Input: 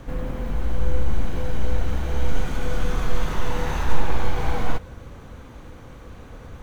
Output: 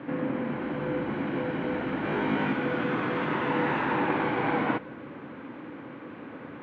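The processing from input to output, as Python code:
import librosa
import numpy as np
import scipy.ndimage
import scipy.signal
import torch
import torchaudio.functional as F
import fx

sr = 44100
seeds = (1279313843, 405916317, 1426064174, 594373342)

y = fx.cabinet(x, sr, low_hz=170.0, low_slope=24, high_hz=2600.0, hz=(190.0, 300.0, 470.0, 720.0, 1200.0), db=(-5, 6, -4, -5, -3))
y = fx.room_flutter(y, sr, wall_m=3.3, rt60_s=0.36, at=(2.02, 2.53))
y = F.gain(torch.from_numpy(y), 5.0).numpy()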